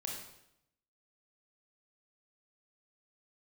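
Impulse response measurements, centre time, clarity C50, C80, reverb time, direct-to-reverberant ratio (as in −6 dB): 48 ms, 2.5 dB, 5.5 dB, 0.80 s, −1.0 dB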